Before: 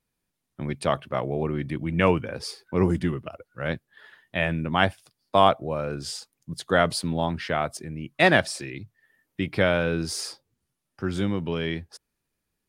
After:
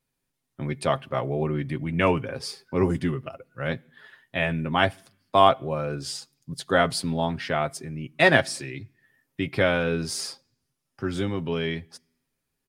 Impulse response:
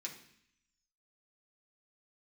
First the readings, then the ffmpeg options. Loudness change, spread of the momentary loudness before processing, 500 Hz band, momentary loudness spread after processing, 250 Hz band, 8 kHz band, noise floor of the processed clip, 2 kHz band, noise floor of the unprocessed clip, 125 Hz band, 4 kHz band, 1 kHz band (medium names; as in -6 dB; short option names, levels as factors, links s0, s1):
0.0 dB, 16 LU, +0.5 dB, 16 LU, -1.0 dB, +0.5 dB, -80 dBFS, +0.5 dB, -81 dBFS, -0.5 dB, +0.5 dB, +0.5 dB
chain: -filter_complex "[0:a]aecho=1:1:7.5:0.44,asplit=2[s0][s1];[1:a]atrim=start_sample=2205[s2];[s1][s2]afir=irnorm=-1:irlink=0,volume=0.141[s3];[s0][s3]amix=inputs=2:normalize=0,volume=0.891"